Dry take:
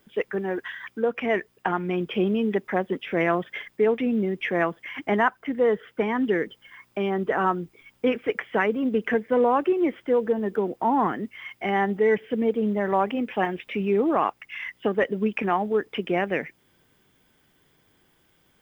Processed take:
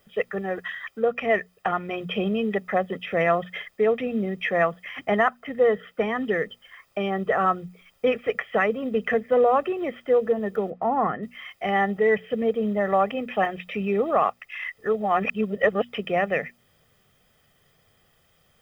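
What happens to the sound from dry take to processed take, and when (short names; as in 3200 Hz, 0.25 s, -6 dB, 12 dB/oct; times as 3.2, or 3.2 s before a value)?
10.7–11.23 LPF 2000 Hz
14.78–15.89 reverse
whole clip: notches 60/120/180/240 Hz; comb 1.6 ms, depth 68%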